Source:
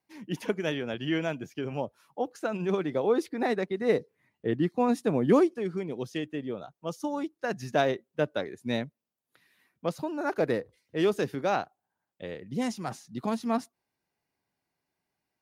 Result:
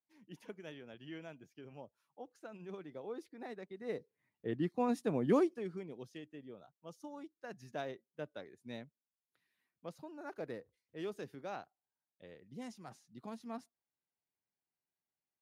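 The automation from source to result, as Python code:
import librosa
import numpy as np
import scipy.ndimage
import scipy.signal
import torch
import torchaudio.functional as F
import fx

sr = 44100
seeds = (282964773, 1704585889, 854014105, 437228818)

y = fx.gain(x, sr, db=fx.line((3.56, -19.0), (4.67, -8.0), (5.51, -8.0), (6.2, -16.5)))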